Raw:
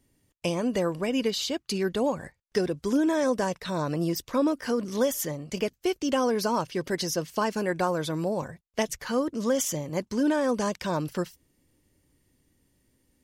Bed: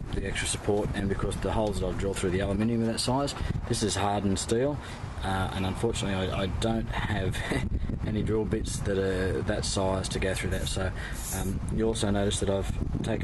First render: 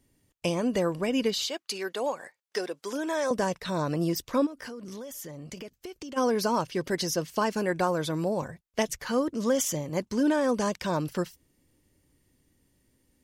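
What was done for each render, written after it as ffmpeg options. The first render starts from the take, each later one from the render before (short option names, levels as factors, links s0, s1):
-filter_complex "[0:a]asettb=1/sr,asplit=3[s0][s1][s2];[s0]atrim=end=1.474[s3];[s1]atrim=start=1.47:end=3.31,asetpts=PTS-STARTPTS,afade=t=in:d=0.004:c=qsin,afade=t=out:st=1.836:d=0.004:c=qsin,highpass=520[s4];[s2]atrim=start=3.306[s5];[s3][s4]acrossfade=d=0.004:c1=hsin:c2=qsin[s6];[s6][s5]acrossfade=d=0.004:c1=qsin:c2=hsin,asplit=3[s7][s8][s9];[s7]afade=t=out:st=4.45:d=0.02[s10];[s8]acompressor=threshold=0.0158:ratio=16:attack=3.2:release=140:knee=1:detection=peak,afade=t=in:st=4.45:d=0.02,afade=t=out:st=6.16:d=0.02[s11];[s9]afade=t=in:st=6.16:d=0.02[s12];[s10][s11][s12]amix=inputs=3:normalize=0"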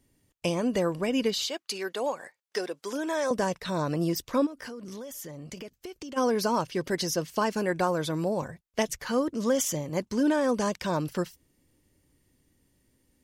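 -af anull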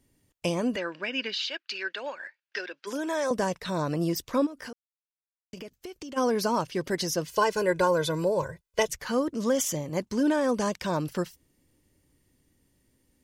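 -filter_complex "[0:a]asplit=3[s0][s1][s2];[s0]afade=t=out:st=0.75:d=0.02[s3];[s1]highpass=430,equalizer=f=460:t=q:w=4:g=-9,equalizer=f=740:t=q:w=4:g=-10,equalizer=f=1100:t=q:w=4:g=-6,equalizer=f=1600:t=q:w=4:g=9,equalizer=f=2600:t=q:w=4:g=7,lowpass=f=4900:w=0.5412,lowpass=f=4900:w=1.3066,afade=t=in:st=0.75:d=0.02,afade=t=out:st=2.86:d=0.02[s4];[s2]afade=t=in:st=2.86:d=0.02[s5];[s3][s4][s5]amix=inputs=3:normalize=0,asettb=1/sr,asplit=3[s6][s7][s8];[s6]atrim=end=7.264[s9];[s7]atrim=start=7.26:end=8.88,asetpts=PTS-STARTPTS,afade=t=in:d=0.004:c=qsin,afade=t=out:st=1.616:d=0.004:c=qsin,aecho=1:1:2:0.89,atrim=end_sample=71442[s10];[s8]atrim=start=8.876[s11];[s9][s10]acrossfade=d=0.004:c1=hsin:c2=qsin[s12];[s12][s11]acrossfade=d=0.004:c1=qsin:c2=hsin,asplit=3[s13][s14][s15];[s13]atrim=end=4.73,asetpts=PTS-STARTPTS,afade=t=out:st=4.726:d=0.004:c=hsin[s16];[s14]atrim=start=4.73:end=5.53,asetpts=PTS-STARTPTS,volume=0[s17];[s15]atrim=start=5.53,asetpts=PTS-STARTPTS,afade=t=in:d=0.004:c=hsin[s18];[s16][s17][s18]concat=n=3:v=0:a=1"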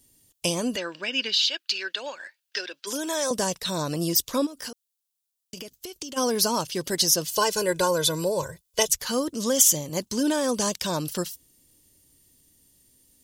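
-af "aexciter=amount=3.1:drive=6.6:freq=3000"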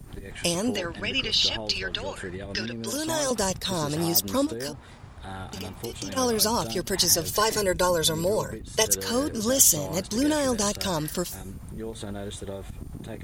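-filter_complex "[1:a]volume=0.376[s0];[0:a][s0]amix=inputs=2:normalize=0"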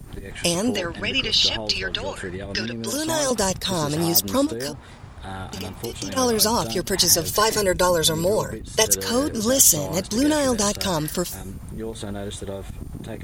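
-af "volume=1.58,alimiter=limit=0.891:level=0:latency=1"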